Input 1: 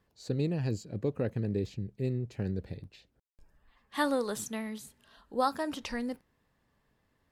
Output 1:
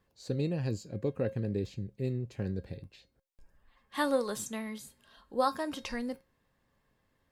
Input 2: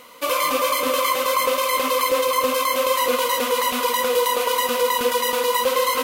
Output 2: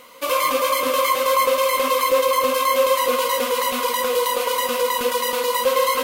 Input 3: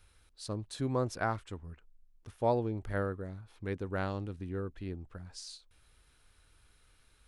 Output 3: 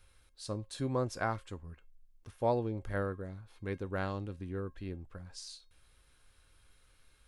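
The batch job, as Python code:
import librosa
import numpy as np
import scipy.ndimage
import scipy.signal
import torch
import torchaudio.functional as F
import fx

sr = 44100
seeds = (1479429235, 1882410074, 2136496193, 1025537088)

y = fx.comb_fb(x, sr, f0_hz=540.0, decay_s=0.22, harmonics='all', damping=0.0, mix_pct=70)
y = F.gain(torch.from_numpy(y), 8.5).numpy()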